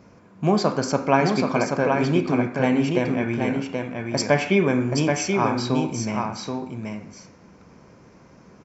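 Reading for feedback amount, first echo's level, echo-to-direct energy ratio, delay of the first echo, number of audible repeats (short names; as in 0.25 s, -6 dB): no steady repeat, -4.5 dB, -4.5 dB, 0.779 s, 1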